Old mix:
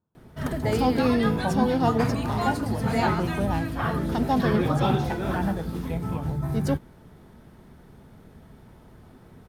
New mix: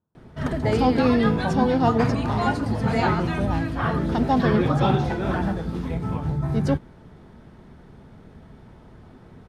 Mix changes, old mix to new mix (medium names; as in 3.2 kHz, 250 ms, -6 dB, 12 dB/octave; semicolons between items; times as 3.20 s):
background +3.0 dB; master: add distance through air 68 m